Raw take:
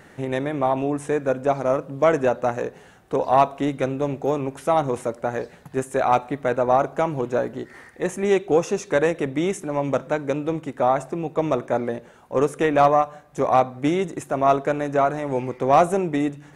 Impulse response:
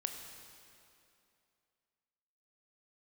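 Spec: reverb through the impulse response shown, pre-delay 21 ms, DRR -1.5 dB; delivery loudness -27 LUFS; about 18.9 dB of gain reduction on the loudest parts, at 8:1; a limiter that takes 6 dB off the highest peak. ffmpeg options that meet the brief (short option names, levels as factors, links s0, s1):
-filter_complex "[0:a]acompressor=threshold=0.0251:ratio=8,alimiter=level_in=1.26:limit=0.0631:level=0:latency=1,volume=0.794,asplit=2[s0][s1];[1:a]atrim=start_sample=2205,adelay=21[s2];[s1][s2]afir=irnorm=-1:irlink=0,volume=1.19[s3];[s0][s3]amix=inputs=2:normalize=0,volume=2.24"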